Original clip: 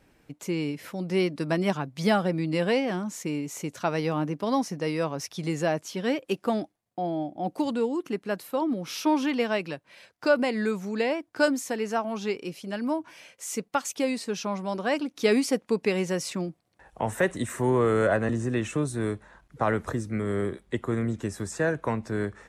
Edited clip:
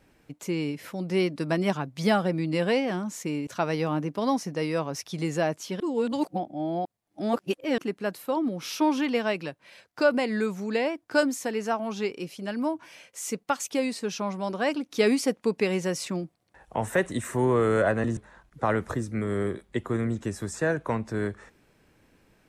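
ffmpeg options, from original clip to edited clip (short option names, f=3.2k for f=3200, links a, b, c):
-filter_complex "[0:a]asplit=5[a][b][c][d][e];[a]atrim=end=3.472[f];[b]atrim=start=3.718:end=6.052[g];[c]atrim=start=6.048:end=8.032,asetpts=PTS-STARTPTS,areverse[h];[d]atrim=start=8.028:end=18.422[i];[e]atrim=start=19.148[j];[f][g]acrossfade=d=0.004:c1=hsin:c2=hsin[k];[k][h]acrossfade=d=0.004:c1=hsin:c2=hsin[l];[l][i]acrossfade=d=0.004:c1=hsin:c2=hsin[m];[m][j]acrossfade=d=0.004:c1=hsin:c2=hsin"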